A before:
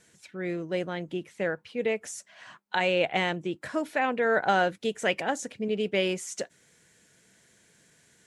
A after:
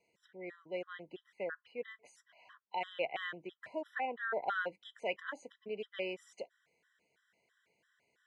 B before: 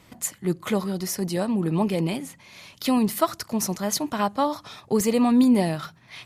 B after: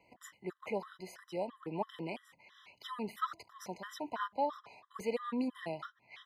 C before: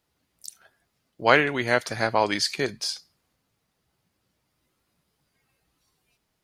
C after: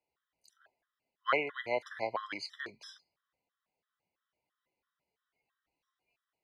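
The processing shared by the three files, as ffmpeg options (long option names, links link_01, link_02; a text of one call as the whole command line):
ffmpeg -i in.wav -filter_complex "[0:a]acrossover=split=390 3600:gain=0.2 1 0.112[link_01][link_02][link_03];[link_01][link_02][link_03]amix=inputs=3:normalize=0,afftfilt=real='re*gt(sin(2*PI*3*pts/sr)*(1-2*mod(floor(b*sr/1024/1000),2)),0)':imag='im*gt(sin(2*PI*3*pts/sr)*(1-2*mod(floor(b*sr/1024/1000),2)),0)':win_size=1024:overlap=0.75,volume=-7dB" out.wav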